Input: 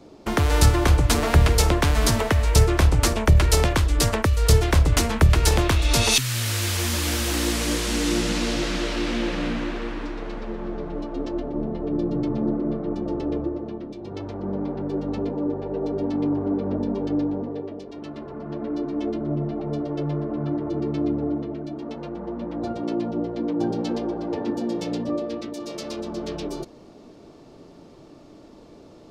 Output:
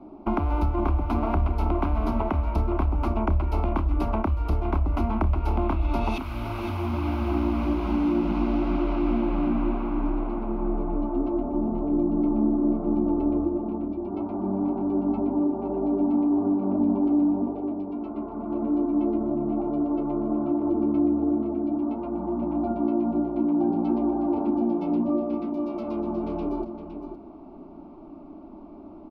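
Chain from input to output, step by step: 6.86–8.35 s: median filter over 3 samples; high-order bell 5.1 kHz -15.5 dB; hum notches 50/100/150 Hz; compression 4:1, threshold -24 dBFS, peak gain reduction 11.5 dB; distance through air 310 m; static phaser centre 480 Hz, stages 6; on a send: delay 513 ms -9.5 dB; on the sum: trim +6 dB

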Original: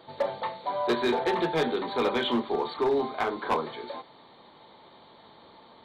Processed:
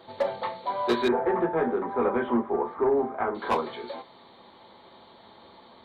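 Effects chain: comb of notches 150 Hz; 1.08–3.35 s: low-pass 1.7 kHz 24 dB/octave; trim +2.5 dB

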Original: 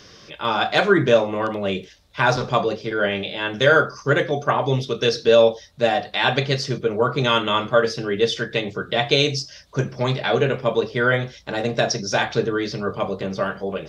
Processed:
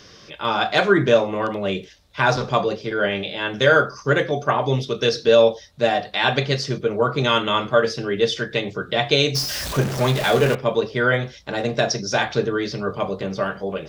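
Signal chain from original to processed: 9.35–10.55 s: jump at every zero crossing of -22.5 dBFS

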